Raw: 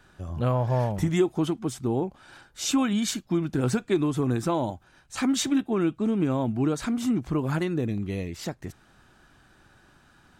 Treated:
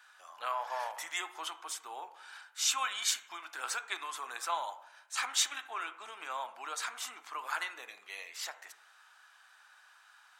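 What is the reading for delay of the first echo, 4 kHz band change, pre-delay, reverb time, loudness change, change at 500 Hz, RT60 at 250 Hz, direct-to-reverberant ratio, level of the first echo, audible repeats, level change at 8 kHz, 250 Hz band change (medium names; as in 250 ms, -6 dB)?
no echo, 0.0 dB, 12 ms, 0.75 s, -9.5 dB, -20.0 dB, 0.80 s, 9.5 dB, no echo, no echo, 0.0 dB, -39.5 dB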